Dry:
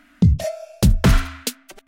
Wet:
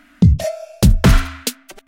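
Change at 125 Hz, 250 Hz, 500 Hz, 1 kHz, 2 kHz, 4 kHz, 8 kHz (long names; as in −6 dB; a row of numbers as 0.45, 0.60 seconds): +3.5, +3.5, +3.5, +3.5, +3.5, +3.5, +3.5 decibels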